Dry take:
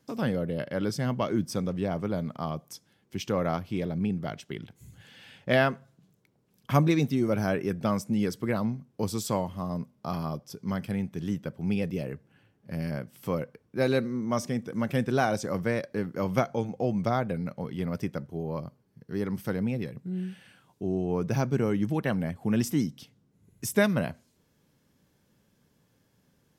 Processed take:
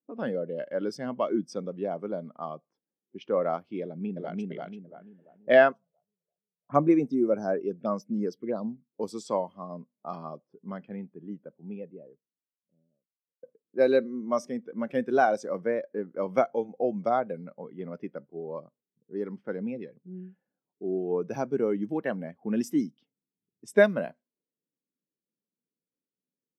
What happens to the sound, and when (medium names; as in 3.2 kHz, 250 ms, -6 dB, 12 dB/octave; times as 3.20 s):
3.82–4.44 s: echo throw 340 ms, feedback 50%, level -0.5 dB
5.72–8.92 s: touch-sensitive phaser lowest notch 260 Hz, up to 4.3 kHz, full sweep at -21 dBFS
10.46–13.43 s: studio fade out
15.66–16.10 s: treble shelf 2.6 kHz -7 dB
whole clip: high-pass 300 Hz 12 dB/octave; level-controlled noise filter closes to 470 Hz, open at -29 dBFS; spectral contrast expander 1.5:1; trim +2 dB